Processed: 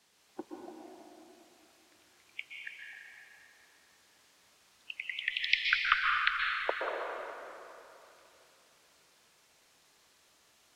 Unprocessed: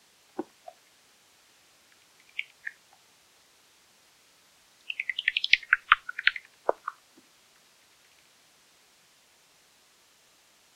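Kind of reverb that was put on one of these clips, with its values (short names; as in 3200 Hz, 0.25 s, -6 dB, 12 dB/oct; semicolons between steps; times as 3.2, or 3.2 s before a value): plate-style reverb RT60 3 s, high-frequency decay 0.7×, pre-delay 0.11 s, DRR -2 dB; gain -8 dB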